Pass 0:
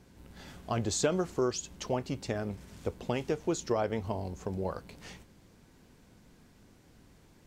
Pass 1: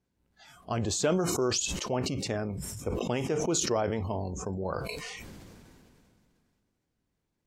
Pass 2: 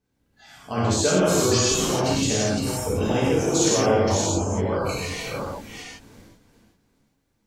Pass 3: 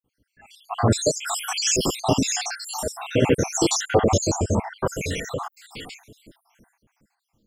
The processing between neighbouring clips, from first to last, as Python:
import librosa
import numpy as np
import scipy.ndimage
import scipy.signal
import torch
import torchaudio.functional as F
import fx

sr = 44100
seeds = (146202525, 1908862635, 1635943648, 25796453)

y1 = fx.noise_reduce_blind(x, sr, reduce_db=22)
y1 = fx.sustainer(y1, sr, db_per_s=23.0)
y2 = fx.reverse_delay(y1, sr, ms=388, wet_db=-4.0)
y2 = fx.rev_gated(y2, sr, seeds[0], gate_ms=190, shape='flat', drr_db=-7.0)
y3 = fx.spec_dropout(y2, sr, seeds[1], share_pct=72)
y3 = y3 * 10.0 ** (5.0 / 20.0)